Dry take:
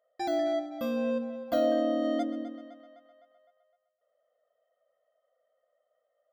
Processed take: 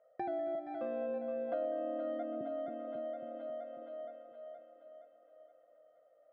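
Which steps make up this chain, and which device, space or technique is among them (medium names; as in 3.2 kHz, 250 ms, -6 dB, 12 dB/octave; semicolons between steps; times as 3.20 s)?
0.55–2.41 s: high-pass 290 Hz 24 dB/octave; two-band feedback delay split 480 Hz, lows 272 ms, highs 470 ms, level -7 dB; bass amplifier (compression 3:1, threshold -48 dBFS, peak gain reduction 18.5 dB; cabinet simulation 85–2100 Hz, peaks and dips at 140 Hz +6 dB, 290 Hz -6 dB, 1.1 kHz -8 dB, 1.9 kHz -7 dB); trim +8.5 dB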